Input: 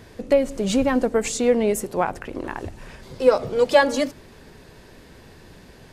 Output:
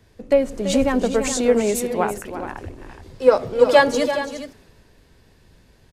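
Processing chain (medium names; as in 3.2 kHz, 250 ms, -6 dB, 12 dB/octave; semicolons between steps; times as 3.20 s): on a send: multi-tap echo 336/418 ms -9/-9 dB; on the sum: three bands expanded up and down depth 40%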